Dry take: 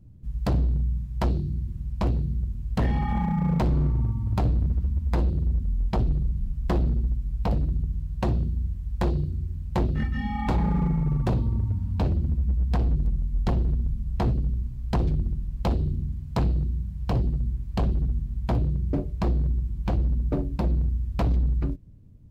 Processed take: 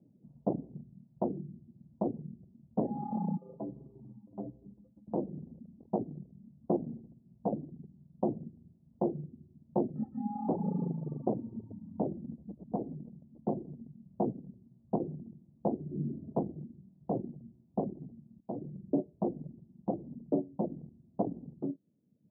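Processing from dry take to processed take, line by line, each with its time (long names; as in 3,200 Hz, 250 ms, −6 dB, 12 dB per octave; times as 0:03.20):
0:03.37–0:05.08: stiff-string resonator 60 Hz, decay 0.39 s, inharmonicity 0.03
0:15.85–0:16.32: thrown reverb, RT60 1.8 s, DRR −8 dB
0:18.40–0:18.97: fade in equal-power, from −15 dB
whole clip: Butterworth low-pass 770 Hz 36 dB per octave; reverb reduction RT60 1 s; high-pass filter 200 Hz 24 dB per octave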